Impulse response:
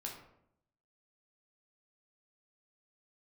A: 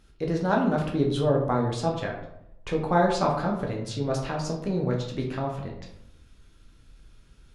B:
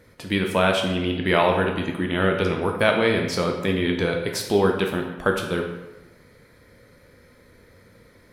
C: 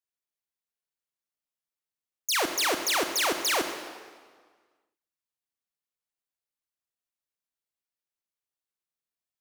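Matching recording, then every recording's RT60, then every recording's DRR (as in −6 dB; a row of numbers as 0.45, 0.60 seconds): A; 0.75, 1.1, 1.6 seconds; −1.0, 2.0, 6.0 decibels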